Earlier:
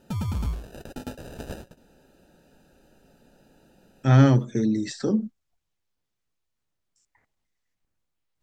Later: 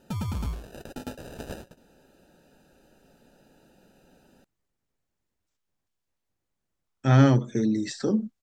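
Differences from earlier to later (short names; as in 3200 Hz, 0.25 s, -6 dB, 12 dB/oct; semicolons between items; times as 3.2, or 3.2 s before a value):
speech: entry +3.00 s; master: add low shelf 150 Hz -4 dB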